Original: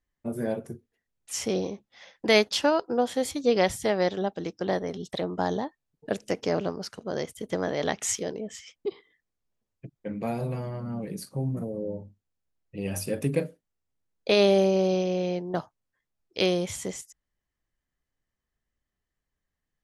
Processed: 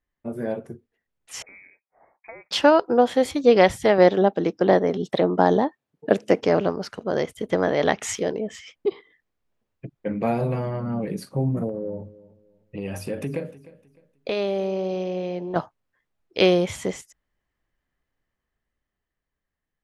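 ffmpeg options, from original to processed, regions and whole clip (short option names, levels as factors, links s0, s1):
-filter_complex "[0:a]asettb=1/sr,asplit=3[s0][s1][s2];[s0]atrim=end=1.424[s3];[s1]atrim=start=1.42:end=2.51,asetpts=PTS-STARTPTS,afade=t=in:d=0.004:c=qsin,afade=t=out:st=1.086:d=0.004:c=qsin,aderivative,acompressor=threshold=0.01:ratio=4:attack=3.2:release=140:knee=1:detection=peak,lowpass=f=2300:t=q:w=0.5098,lowpass=f=2300:t=q:w=0.6013,lowpass=f=2300:t=q:w=0.9,lowpass=f=2300:t=q:w=2.563,afreqshift=-2700[s4];[s2]atrim=start=2.506[s5];[s3][s4]acrossfade=d=0.004:c1=hsin:c2=qsin[s6];[s6][s5]acrossfade=d=0.004:c1=qsin:c2=hsin,asettb=1/sr,asplit=3[s7][s8][s9];[s7]atrim=end=3.984[s10];[s8]atrim=start=3.98:end=6.41,asetpts=PTS-STARTPTS,afade=t=in:d=0.004:c=qsin,afade=t=out:st=2.426:d=0.004:c=qsin,highpass=110,equalizer=f=310:t=o:w=2.9:g=4[s11];[s9]atrim=start=6.406[s12];[s10][s11]acrossfade=d=0.004:c1=hsin:c2=qsin[s13];[s13][s12]acrossfade=d=0.004:c1=qsin:c2=hsin,asettb=1/sr,asplit=3[s14][s15][s16];[s14]atrim=end=11.694[s17];[s15]atrim=start=11.69:end=15.56,asetpts=PTS-STARTPTS,afade=t=in:d=0.004:c=qsin,afade=t=out:st=3.866:d=0.004:c=qsin,acompressor=threshold=0.0178:ratio=2.5:attack=3.2:release=140:knee=1:detection=peak,aecho=1:1:304|608|912:0.112|0.0337|0.0101,atrim=end_sample=170667[s18];[s16]atrim=start=15.556[s19];[s17][s18]acrossfade=d=0.004:c1=hsin:c2=qsin[s20];[s20][s19]acrossfade=d=0.004:c1=qsin:c2=hsin,bass=f=250:g=-3,treble=f=4000:g=-11,dynaudnorm=f=140:g=21:m=2,volume=1.26"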